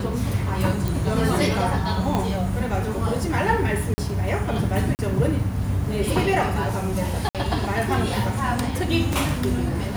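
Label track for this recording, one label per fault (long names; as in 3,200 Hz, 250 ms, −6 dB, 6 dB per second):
0.880000	0.880000	click
2.150000	2.150000	click −10 dBFS
3.940000	3.980000	drop-out 40 ms
4.950000	4.990000	drop-out 39 ms
7.290000	7.350000	drop-out 57 ms
9.130000	9.130000	click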